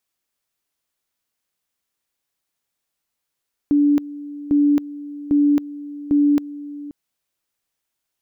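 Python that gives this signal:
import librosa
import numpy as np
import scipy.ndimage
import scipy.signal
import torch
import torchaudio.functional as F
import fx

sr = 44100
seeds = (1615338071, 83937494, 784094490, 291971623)

y = fx.two_level_tone(sr, hz=290.0, level_db=-12.0, drop_db=17.5, high_s=0.27, low_s=0.53, rounds=4)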